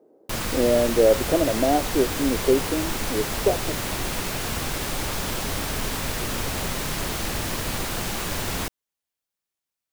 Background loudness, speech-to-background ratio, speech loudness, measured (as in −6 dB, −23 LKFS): −27.5 LKFS, 4.5 dB, −23.0 LKFS